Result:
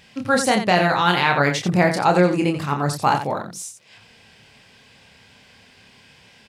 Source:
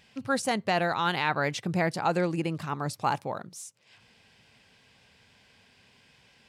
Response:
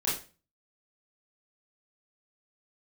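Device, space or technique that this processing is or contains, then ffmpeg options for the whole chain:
slapback doubling: -filter_complex "[0:a]asplit=3[s0][s1][s2];[s1]adelay=28,volume=0.562[s3];[s2]adelay=88,volume=0.355[s4];[s0][s3][s4]amix=inputs=3:normalize=0,volume=2.51"

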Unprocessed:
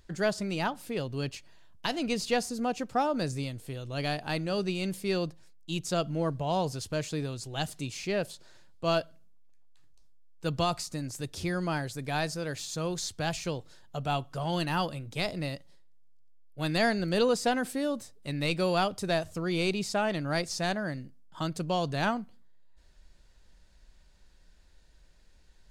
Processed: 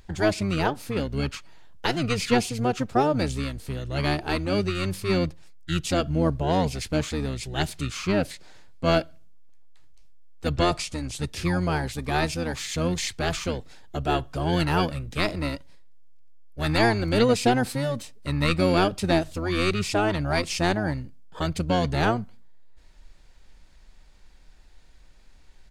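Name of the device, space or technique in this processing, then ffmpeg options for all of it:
octave pedal: -filter_complex "[0:a]asplit=2[s0][s1];[s1]asetrate=22050,aresample=44100,atempo=2,volume=0.794[s2];[s0][s2]amix=inputs=2:normalize=0,asettb=1/sr,asplit=3[s3][s4][s5];[s3]atrim=end=10.504[s6];[s4]atrim=start=10.5:end=11.28,asetpts=PTS-STARTPTS,afade=t=in:d=0.004:c=qsin,afade=t=out:st=0.776:d=0.004:c=qsin,lowpass=f=11000:w=0.5412,lowpass=f=11000:w=1.3066[s7];[s5]atrim=start=11.276[s8];[s6][s7]acrossfade=d=0.004:c1=hsin:c2=qsin[s9];[s9][s8]acrossfade=d=0.004:c1=qsin:c2=hsin,volume=1.58"

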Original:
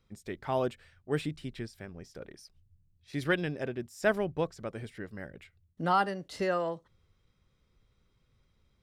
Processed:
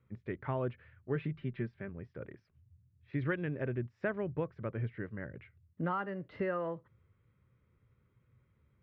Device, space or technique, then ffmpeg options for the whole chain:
bass amplifier: -filter_complex "[0:a]acompressor=threshold=0.0282:ratio=3,highpass=76,equalizer=f=77:t=q:w=4:g=5,equalizer=f=120:t=q:w=4:g=9,equalizer=f=750:t=q:w=4:g=-8,lowpass=f=2300:w=0.5412,lowpass=f=2300:w=1.3066,asettb=1/sr,asplit=3[s0][s1][s2];[s0]atrim=end=1.154[s3];[s1]atrim=start=1.15:end=1.89,asetpts=PTS-STARTPTS,afade=t=in:d=0.004:c=qsin,afade=t=out:st=0.736:d=0.004:c=qsin,aecho=1:1:5.1:0.56,atrim=end_sample=32634[s4];[s2]atrim=start=1.886[s5];[s3][s4]acrossfade=d=0.004:c1=hsin:c2=qsin[s6];[s6][s5]acrossfade=d=0.004:c1=qsin:c2=hsin"

